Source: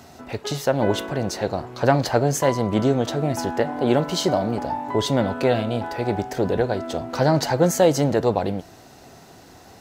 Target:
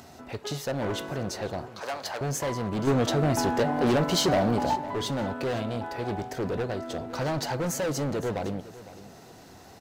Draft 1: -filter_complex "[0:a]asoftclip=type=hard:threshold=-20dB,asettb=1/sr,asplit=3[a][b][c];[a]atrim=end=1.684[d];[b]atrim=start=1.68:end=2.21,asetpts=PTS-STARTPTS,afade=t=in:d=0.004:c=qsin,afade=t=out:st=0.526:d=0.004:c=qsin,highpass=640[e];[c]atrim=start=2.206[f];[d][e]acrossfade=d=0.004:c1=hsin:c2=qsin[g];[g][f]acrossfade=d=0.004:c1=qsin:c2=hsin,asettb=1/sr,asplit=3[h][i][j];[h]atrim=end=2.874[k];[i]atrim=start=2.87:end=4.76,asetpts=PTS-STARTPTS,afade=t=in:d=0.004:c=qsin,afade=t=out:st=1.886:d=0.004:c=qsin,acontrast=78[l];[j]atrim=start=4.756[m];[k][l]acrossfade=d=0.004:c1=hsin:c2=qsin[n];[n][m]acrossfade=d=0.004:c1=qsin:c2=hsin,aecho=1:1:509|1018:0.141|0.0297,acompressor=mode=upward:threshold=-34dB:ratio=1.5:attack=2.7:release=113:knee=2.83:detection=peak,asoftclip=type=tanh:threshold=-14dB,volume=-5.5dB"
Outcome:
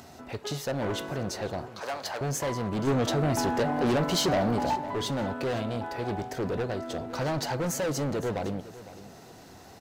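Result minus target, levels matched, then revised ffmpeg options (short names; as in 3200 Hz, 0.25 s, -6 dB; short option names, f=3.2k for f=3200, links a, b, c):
soft clip: distortion +19 dB
-filter_complex "[0:a]asoftclip=type=hard:threshold=-20dB,asettb=1/sr,asplit=3[a][b][c];[a]atrim=end=1.684[d];[b]atrim=start=1.68:end=2.21,asetpts=PTS-STARTPTS,afade=t=in:d=0.004:c=qsin,afade=t=out:st=0.526:d=0.004:c=qsin,highpass=640[e];[c]atrim=start=2.206[f];[d][e]acrossfade=d=0.004:c1=hsin:c2=qsin[g];[g][f]acrossfade=d=0.004:c1=qsin:c2=hsin,asettb=1/sr,asplit=3[h][i][j];[h]atrim=end=2.874[k];[i]atrim=start=2.87:end=4.76,asetpts=PTS-STARTPTS,afade=t=in:d=0.004:c=qsin,afade=t=out:st=1.886:d=0.004:c=qsin,acontrast=78[l];[j]atrim=start=4.756[m];[k][l]acrossfade=d=0.004:c1=hsin:c2=qsin[n];[n][m]acrossfade=d=0.004:c1=qsin:c2=hsin,aecho=1:1:509|1018:0.141|0.0297,acompressor=mode=upward:threshold=-34dB:ratio=1.5:attack=2.7:release=113:knee=2.83:detection=peak,asoftclip=type=tanh:threshold=-3.5dB,volume=-5.5dB"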